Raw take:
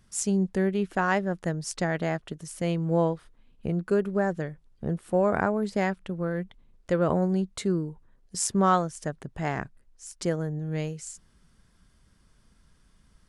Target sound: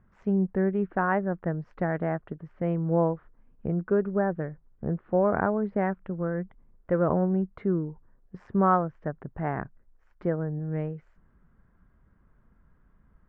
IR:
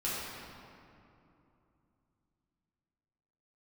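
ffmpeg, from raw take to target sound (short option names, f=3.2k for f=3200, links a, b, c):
-af "lowpass=f=1.7k:w=0.5412,lowpass=f=1.7k:w=1.3066"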